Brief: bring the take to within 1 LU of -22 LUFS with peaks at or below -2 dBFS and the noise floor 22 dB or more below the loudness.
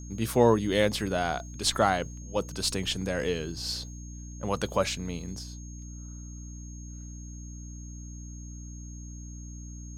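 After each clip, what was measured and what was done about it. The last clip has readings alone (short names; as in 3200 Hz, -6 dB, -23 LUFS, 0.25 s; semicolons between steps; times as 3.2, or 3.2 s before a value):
hum 60 Hz; harmonics up to 300 Hz; hum level -39 dBFS; steady tone 6500 Hz; tone level -49 dBFS; loudness -28.5 LUFS; peak -8.0 dBFS; loudness target -22.0 LUFS
-> notches 60/120/180/240/300 Hz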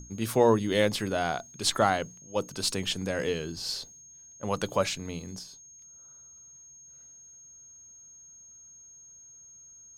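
hum none; steady tone 6500 Hz; tone level -49 dBFS
-> notch 6500 Hz, Q 30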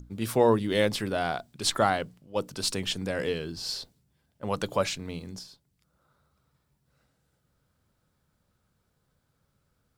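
steady tone none; loudness -28.5 LUFS; peak -9.0 dBFS; loudness target -22.0 LUFS
-> gain +6.5 dB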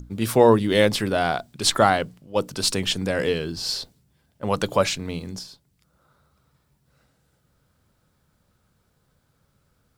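loudness -22.0 LUFS; peak -2.5 dBFS; noise floor -68 dBFS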